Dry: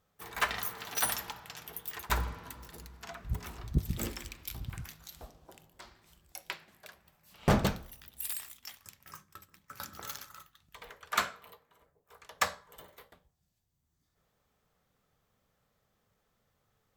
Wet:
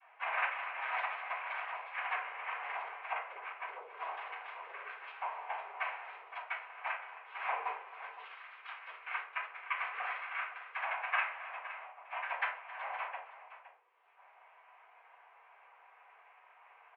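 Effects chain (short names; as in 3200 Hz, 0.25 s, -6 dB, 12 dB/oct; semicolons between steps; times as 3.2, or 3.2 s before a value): rattling part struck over -35 dBFS, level -33 dBFS; 2.97–3.6 gate -42 dBFS, range -14 dB; 5.25–6.37 comb 6.1 ms, depth 73%; compressor 8:1, threshold -49 dBFS, peak gain reduction 27.5 dB; noise vocoder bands 4; tapped delay 0.268/0.516 s -17.5/-13.5 dB; shoebox room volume 170 m³, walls furnished, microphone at 5.1 m; mistuned SSB +170 Hz 530–2300 Hz; gain +9.5 dB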